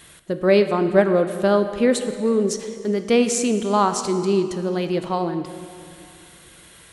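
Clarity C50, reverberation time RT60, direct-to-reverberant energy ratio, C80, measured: 10.0 dB, 2.5 s, 8.5 dB, 10.5 dB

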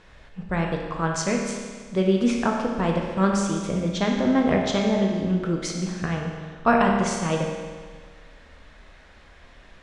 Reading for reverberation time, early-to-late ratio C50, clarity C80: 1.6 s, 2.5 dB, 4.0 dB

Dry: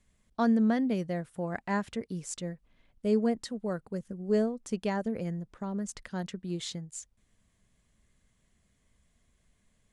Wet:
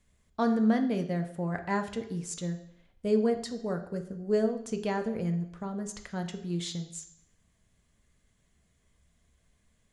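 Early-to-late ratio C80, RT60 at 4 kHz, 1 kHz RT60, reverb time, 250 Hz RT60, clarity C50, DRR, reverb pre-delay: 14.0 dB, 0.70 s, 0.70 s, 0.70 s, 0.75 s, 11.0 dB, 6.0 dB, 3 ms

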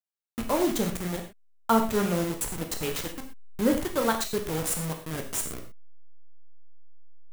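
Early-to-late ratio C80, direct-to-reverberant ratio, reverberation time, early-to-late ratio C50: 12.0 dB, 3.5 dB, not exponential, 8.0 dB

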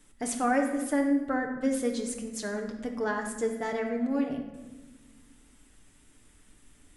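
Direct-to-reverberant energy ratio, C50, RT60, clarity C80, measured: 1.5 dB, 6.5 dB, 1.2 s, 8.5 dB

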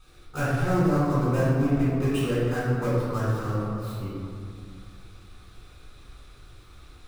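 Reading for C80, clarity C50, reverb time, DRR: -1.0 dB, -3.5 dB, 2.4 s, -11.0 dB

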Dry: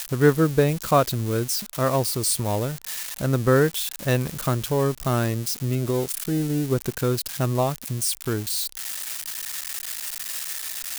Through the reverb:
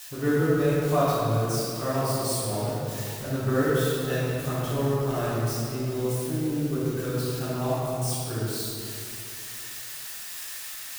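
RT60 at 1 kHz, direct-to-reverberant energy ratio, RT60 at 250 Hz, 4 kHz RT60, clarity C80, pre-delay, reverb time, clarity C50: 2.5 s, -11.0 dB, 2.9 s, 1.6 s, -2.0 dB, 6 ms, 2.6 s, -4.5 dB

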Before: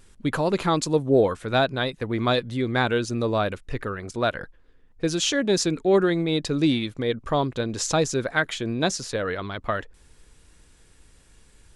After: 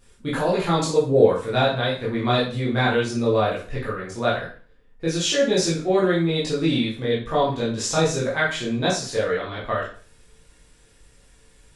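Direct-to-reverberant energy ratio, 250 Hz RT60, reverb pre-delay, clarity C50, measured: -8.0 dB, 0.45 s, 7 ms, 5.0 dB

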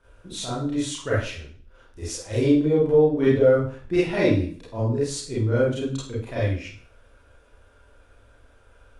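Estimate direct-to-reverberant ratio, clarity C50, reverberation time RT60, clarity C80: -9.5 dB, 2.5 dB, 0.50 s, 6.0 dB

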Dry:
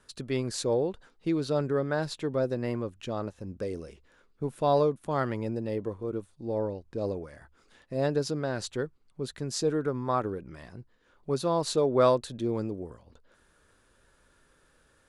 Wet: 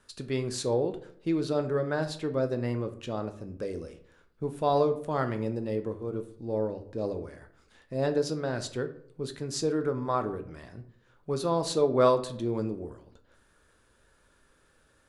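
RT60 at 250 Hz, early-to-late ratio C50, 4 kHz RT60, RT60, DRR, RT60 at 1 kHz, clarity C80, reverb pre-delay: 0.75 s, 13.0 dB, 0.35 s, 0.65 s, 7.5 dB, 0.60 s, 17.0 dB, 9 ms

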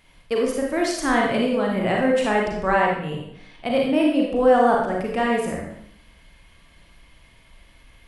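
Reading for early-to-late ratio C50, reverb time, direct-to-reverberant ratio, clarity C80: 1.5 dB, 0.75 s, -1.5 dB, 5.0 dB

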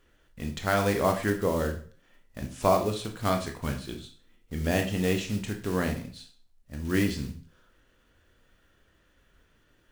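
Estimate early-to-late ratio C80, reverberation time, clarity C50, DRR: 14.5 dB, 0.45 s, 10.0 dB, 4.0 dB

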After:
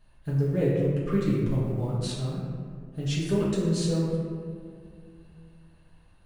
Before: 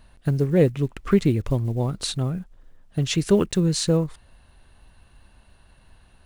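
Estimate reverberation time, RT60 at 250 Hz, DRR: 2.2 s, 2.9 s, -7.5 dB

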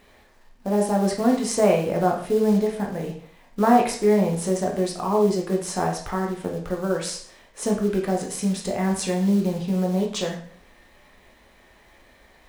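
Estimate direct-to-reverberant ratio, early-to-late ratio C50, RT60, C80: 0.0 dB, 6.5 dB, 0.50 s, 10.5 dB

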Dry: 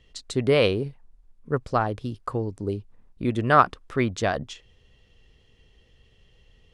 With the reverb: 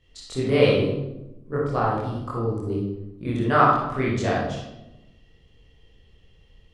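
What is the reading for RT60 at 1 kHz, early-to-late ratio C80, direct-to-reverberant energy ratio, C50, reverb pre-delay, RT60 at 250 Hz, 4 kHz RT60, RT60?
0.85 s, 3.5 dB, -7.5 dB, -0.5 dB, 23 ms, 1.4 s, 0.65 s, 0.95 s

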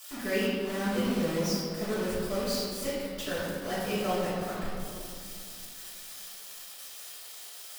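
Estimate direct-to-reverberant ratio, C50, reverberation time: -13.5 dB, -2.0 dB, 2.5 s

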